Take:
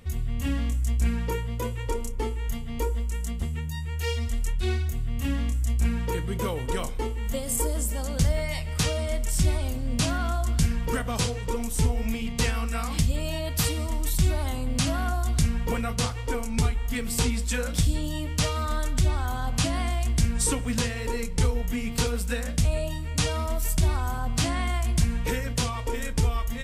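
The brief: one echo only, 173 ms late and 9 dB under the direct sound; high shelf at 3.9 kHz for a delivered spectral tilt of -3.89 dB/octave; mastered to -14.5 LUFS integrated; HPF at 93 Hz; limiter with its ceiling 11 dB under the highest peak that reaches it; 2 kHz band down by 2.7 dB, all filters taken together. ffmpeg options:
-af "highpass=93,equalizer=f=2000:t=o:g=-5.5,highshelf=f=3900:g=7.5,alimiter=limit=0.133:level=0:latency=1,aecho=1:1:173:0.355,volume=5.62"

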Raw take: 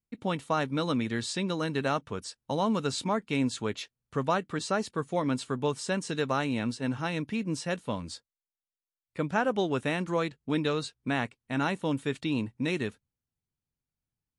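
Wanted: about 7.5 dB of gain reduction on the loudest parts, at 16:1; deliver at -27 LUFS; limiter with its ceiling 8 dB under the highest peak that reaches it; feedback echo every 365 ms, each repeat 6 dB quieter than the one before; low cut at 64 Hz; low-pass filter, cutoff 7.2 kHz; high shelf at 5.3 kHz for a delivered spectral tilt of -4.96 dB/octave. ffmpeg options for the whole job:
-af "highpass=64,lowpass=7200,highshelf=f=5300:g=-6,acompressor=threshold=0.0316:ratio=16,alimiter=level_in=1.41:limit=0.0631:level=0:latency=1,volume=0.708,aecho=1:1:365|730|1095|1460|1825|2190:0.501|0.251|0.125|0.0626|0.0313|0.0157,volume=3.35"

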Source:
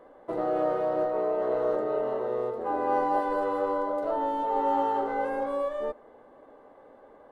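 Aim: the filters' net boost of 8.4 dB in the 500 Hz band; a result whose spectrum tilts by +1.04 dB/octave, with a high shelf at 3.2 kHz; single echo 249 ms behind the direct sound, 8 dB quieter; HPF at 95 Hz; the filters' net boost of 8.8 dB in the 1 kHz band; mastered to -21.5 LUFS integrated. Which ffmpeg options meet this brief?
-af "highpass=95,equalizer=f=500:t=o:g=7.5,equalizer=f=1000:t=o:g=8,highshelf=f=3200:g=3,aecho=1:1:249:0.398,volume=0.794"

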